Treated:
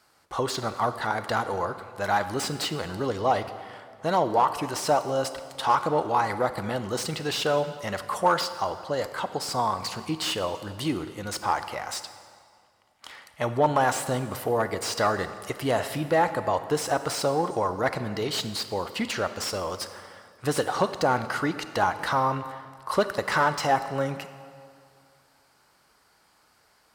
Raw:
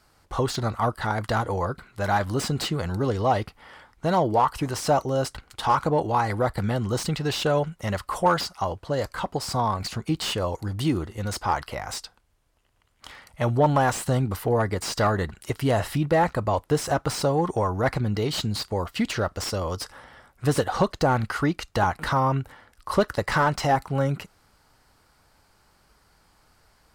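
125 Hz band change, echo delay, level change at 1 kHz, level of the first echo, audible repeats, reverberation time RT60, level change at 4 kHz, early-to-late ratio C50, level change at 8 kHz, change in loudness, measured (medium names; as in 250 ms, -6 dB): -8.5 dB, no echo, -0.5 dB, no echo, no echo, 2.2 s, +0.5 dB, 11.0 dB, 0.0 dB, -1.5 dB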